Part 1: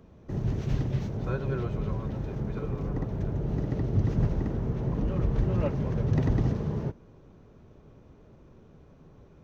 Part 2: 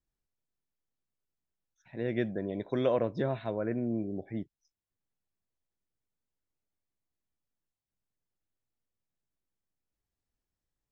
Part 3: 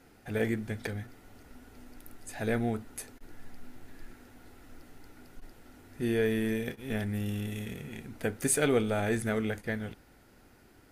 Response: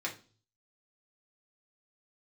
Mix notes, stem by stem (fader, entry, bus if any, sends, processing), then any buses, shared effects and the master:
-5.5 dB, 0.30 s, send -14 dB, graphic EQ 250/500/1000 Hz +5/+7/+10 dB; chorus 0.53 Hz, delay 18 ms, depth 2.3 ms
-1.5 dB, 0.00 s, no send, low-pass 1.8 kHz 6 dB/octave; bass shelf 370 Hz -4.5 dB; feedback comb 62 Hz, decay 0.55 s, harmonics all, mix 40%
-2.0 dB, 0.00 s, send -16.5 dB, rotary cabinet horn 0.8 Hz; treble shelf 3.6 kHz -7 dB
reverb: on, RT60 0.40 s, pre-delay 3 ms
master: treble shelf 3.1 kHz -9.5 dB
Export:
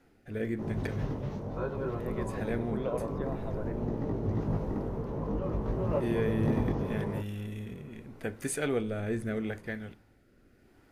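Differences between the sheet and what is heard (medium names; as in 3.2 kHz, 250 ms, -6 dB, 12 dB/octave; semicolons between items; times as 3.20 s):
stem 1: send off; master: missing treble shelf 3.1 kHz -9.5 dB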